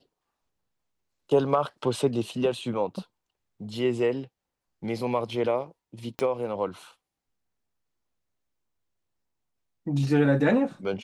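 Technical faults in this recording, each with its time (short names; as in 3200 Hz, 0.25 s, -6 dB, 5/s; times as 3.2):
6.19 pop -16 dBFS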